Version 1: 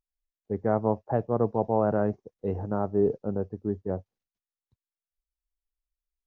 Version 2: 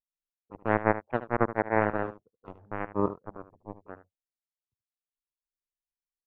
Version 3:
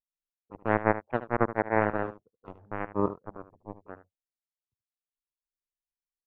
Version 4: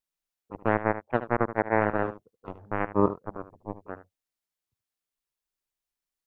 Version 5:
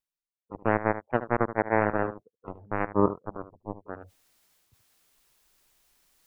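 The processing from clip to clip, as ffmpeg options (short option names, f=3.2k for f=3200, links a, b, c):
-af "equalizer=f=1.4k:t=o:w=0.34:g=-10,aeval=exprs='0.266*(cos(1*acos(clip(val(0)/0.266,-1,1)))-cos(1*PI/2))+0.0944*(cos(3*acos(clip(val(0)/0.266,-1,1)))-cos(3*PI/2))':c=same,aecho=1:1:75:0.211,volume=4dB"
-af anull
-af "alimiter=limit=-13dB:level=0:latency=1:release=405,volume=5.5dB"
-af "afftdn=nr=14:nf=-50,areverse,acompressor=mode=upward:threshold=-38dB:ratio=2.5,areverse"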